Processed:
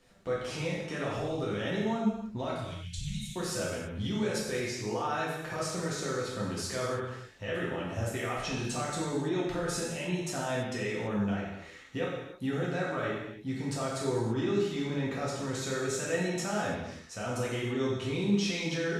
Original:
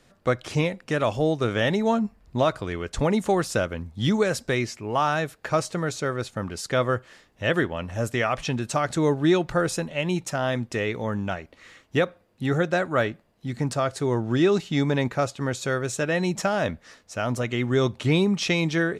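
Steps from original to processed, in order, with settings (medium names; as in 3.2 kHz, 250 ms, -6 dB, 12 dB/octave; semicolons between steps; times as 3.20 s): 2.55–3.36 s: elliptic band-stop 140–3000 Hz, stop band 50 dB; peak limiter -21.5 dBFS, peak gain reduction 10.5 dB; gated-style reverb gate 360 ms falling, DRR -6 dB; trim -8.5 dB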